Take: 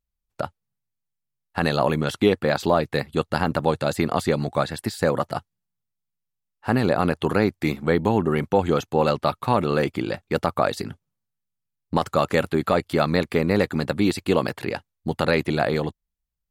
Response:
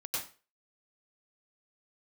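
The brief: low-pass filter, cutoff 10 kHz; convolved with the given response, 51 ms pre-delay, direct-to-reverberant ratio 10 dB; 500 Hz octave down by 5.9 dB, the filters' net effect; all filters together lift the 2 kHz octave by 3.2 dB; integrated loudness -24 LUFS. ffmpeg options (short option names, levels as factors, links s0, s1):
-filter_complex "[0:a]lowpass=10000,equalizer=f=500:t=o:g=-7.5,equalizer=f=2000:t=o:g=4.5,asplit=2[s0][s1];[1:a]atrim=start_sample=2205,adelay=51[s2];[s1][s2]afir=irnorm=-1:irlink=0,volume=0.224[s3];[s0][s3]amix=inputs=2:normalize=0,volume=1.06"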